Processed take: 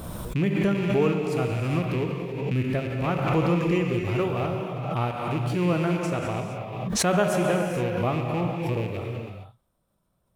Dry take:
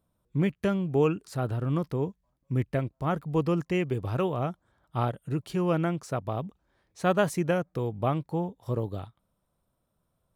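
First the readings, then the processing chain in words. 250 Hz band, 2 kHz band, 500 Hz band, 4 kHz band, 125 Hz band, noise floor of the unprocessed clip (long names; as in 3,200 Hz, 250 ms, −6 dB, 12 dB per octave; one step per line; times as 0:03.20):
+4.0 dB, +6.0 dB, +3.5 dB, +8.5 dB, +3.5 dB, −77 dBFS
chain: loose part that buzzes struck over −30 dBFS, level −29 dBFS
reverb whose tail is shaped and stops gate 490 ms flat, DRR 1.5 dB
background raised ahead of every attack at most 39 dB per second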